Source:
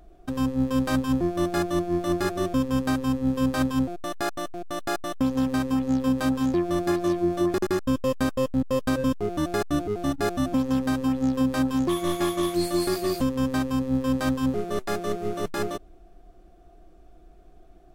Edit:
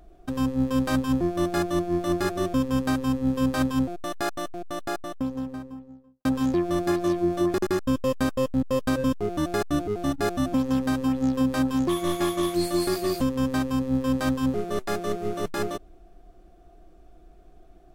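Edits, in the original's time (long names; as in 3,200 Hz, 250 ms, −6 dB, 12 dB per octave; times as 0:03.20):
0:04.42–0:06.25: fade out and dull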